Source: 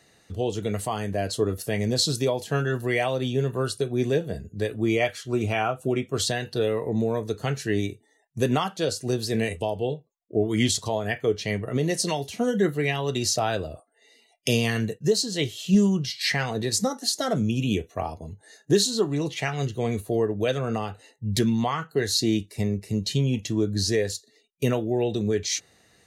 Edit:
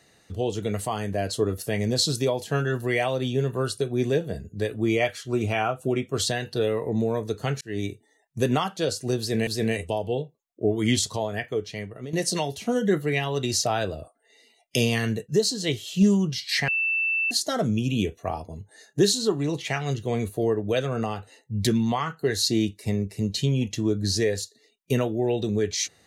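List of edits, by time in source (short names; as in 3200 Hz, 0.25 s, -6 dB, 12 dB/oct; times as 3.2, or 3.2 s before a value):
7.61–7.88 fade in
9.19–9.47 loop, 2 plays
10.75–11.85 fade out, to -13 dB
16.4–17.03 bleep 2660 Hz -21.5 dBFS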